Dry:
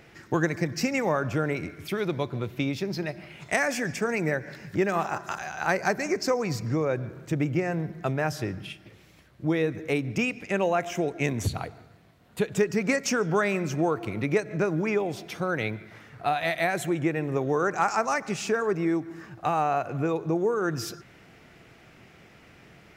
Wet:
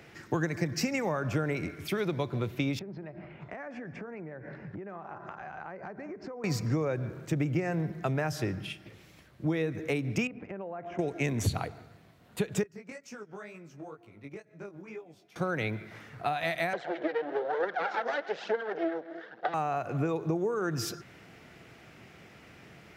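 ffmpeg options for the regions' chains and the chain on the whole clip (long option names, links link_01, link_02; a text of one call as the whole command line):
ffmpeg -i in.wav -filter_complex "[0:a]asettb=1/sr,asplit=3[link_01][link_02][link_03];[link_01]atrim=end=2.794[link_04];[link_02]atrim=start=2.79:end=6.44,asetpts=PTS-STARTPTS,afade=type=in:duration=0.004:curve=qsin,afade=type=out:start_time=3.646:duration=0.004:curve=qsin,lowpass=1400,acompressor=threshold=-37dB:ratio=16:attack=3.2:release=140:knee=1:detection=peak[link_05];[link_03]atrim=start=6.436[link_06];[link_04][link_05]acrossfade=duration=0.004:curve1=hsin:curve2=qsin[link_07];[link_07][link_06]acrossfade=duration=0.004:curve1=qsin:curve2=hsin,asettb=1/sr,asplit=3[link_08][link_09][link_10];[link_08]atrim=end=10.274[link_11];[link_09]atrim=start=10.27:end=10.99,asetpts=PTS-STARTPTS,afade=type=in:duration=0.004:curve=qsin,afade=type=out:start_time=0.716:duration=0.004:curve=qsin,lowpass=1200,acompressor=threshold=-36dB:ratio=6:attack=3.2:release=140:knee=1:detection=peak[link_12];[link_10]atrim=start=10.986[link_13];[link_11][link_12]acrossfade=duration=0.004:curve1=hsin:curve2=qsin[link_14];[link_14][link_13]acrossfade=duration=0.004:curve1=qsin:curve2=hsin,asettb=1/sr,asplit=3[link_15][link_16][link_17];[link_15]atrim=end=12.634[link_18];[link_16]atrim=start=12.63:end=15.36,asetpts=PTS-STARTPTS,afade=type=in:duration=0.004:curve=qsin,afade=type=out:start_time=2.726:duration=0.004:curve=qsin,agate=range=-19dB:threshold=-25dB:ratio=16:release=100:detection=peak,acompressor=threshold=-36dB:ratio=10:attack=3.2:release=140:knee=1:detection=peak,flanger=delay=17:depth=4.6:speed=2.1[link_19];[link_17]atrim=start=15.356[link_20];[link_18][link_19]acrossfade=duration=0.004:curve1=hsin:curve2=qsin[link_21];[link_21][link_20]acrossfade=duration=0.004:curve1=qsin:curve2=hsin,asettb=1/sr,asplit=3[link_22][link_23][link_24];[link_22]atrim=end=16.734[link_25];[link_23]atrim=start=16.73:end=19.54,asetpts=PTS-STARTPTS,afade=type=in:duration=0.004:curve=qsin,afade=type=out:start_time=2.806:duration=0.004:curve=qsin,aphaser=in_gain=1:out_gain=1:delay=4.5:decay=0.62:speed=1.1:type=triangular,aeval=exprs='max(val(0),0)':channel_layout=same,highpass=frequency=240:width=0.5412,highpass=frequency=240:width=1.3066,equalizer=frequency=260:width_type=q:width=4:gain=-9,equalizer=frequency=500:width_type=q:width=4:gain=8,equalizer=frequency=720:width_type=q:width=4:gain=5,equalizer=frequency=1100:width_type=q:width=4:gain=-7,equalizer=frequency=1600:width_type=q:width=4:gain=6,equalizer=frequency=2500:width_type=q:width=4:gain=-9,lowpass=frequency=3900:width=0.5412,lowpass=frequency=3900:width=1.3066[link_26];[link_24]atrim=start=19.536[link_27];[link_25][link_26]acrossfade=duration=0.004:curve1=hsin:curve2=qsin[link_28];[link_28][link_27]acrossfade=duration=0.004:curve1=qsin:curve2=hsin,highpass=56,acrossover=split=140[link_29][link_30];[link_30]acompressor=threshold=-27dB:ratio=6[link_31];[link_29][link_31]amix=inputs=2:normalize=0" out.wav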